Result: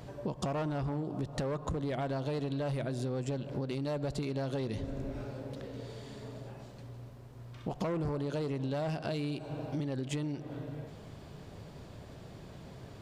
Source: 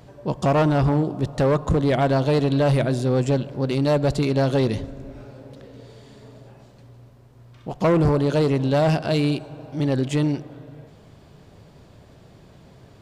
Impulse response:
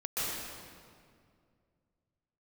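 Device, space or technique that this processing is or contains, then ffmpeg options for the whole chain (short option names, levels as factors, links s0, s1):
serial compression, peaks first: -af "acompressor=threshold=0.0355:ratio=6,acompressor=threshold=0.0251:ratio=3"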